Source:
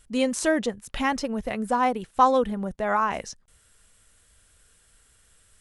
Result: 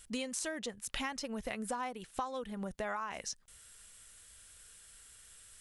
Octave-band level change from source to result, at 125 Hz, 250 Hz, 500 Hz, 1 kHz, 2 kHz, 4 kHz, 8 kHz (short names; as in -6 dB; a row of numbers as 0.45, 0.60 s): -11.0, -14.5, -15.5, -17.0, -11.5, -6.5, -4.5 dB